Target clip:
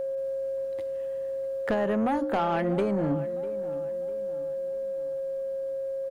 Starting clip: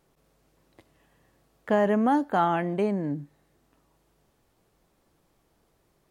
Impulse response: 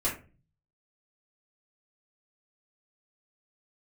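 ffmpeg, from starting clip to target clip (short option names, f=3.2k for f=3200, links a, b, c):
-filter_complex "[0:a]bandreject=f=60:t=h:w=6,bandreject=f=120:t=h:w=6,bandreject=f=180:t=h:w=6,bandreject=f=240:t=h:w=6,bandreject=f=300:t=h:w=6,acompressor=threshold=-28dB:ratio=10,aeval=exprs='val(0)+0.0178*sin(2*PI*540*n/s)':c=same,asoftclip=type=tanh:threshold=-26.5dB,asplit=2[a][b];[b]adelay=649,lowpass=f=2.4k:p=1,volume=-16dB,asplit=2[c][d];[d]adelay=649,lowpass=f=2.4k:p=1,volume=0.44,asplit=2[e][f];[f]adelay=649,lowpass=f=2.4k:p=1,volume=0.44,asplit=2[g][h];[h]adelay=649,lowpass=f=2.4k:p=1,volume=0.44[i];[a][c][e][g][i]amix=inputs=5:normalize=0,volume=7.5dB"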